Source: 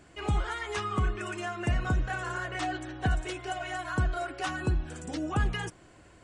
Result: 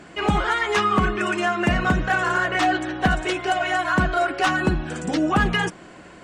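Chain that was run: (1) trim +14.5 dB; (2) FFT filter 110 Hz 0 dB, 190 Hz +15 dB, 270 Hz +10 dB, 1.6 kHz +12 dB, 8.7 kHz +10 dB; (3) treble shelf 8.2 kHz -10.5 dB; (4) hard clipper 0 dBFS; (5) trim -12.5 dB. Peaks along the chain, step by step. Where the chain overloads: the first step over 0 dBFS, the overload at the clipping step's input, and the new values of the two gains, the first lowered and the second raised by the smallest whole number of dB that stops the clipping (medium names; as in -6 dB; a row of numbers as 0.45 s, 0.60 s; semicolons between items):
-4.5 dBFS, +8.0 dBFS, +8.0 dBFS, 0.0 dBFS, -12.5 dBFS; step 2, 8.0 dB; step 1 +6.5 dB, step 5 -4.5 dB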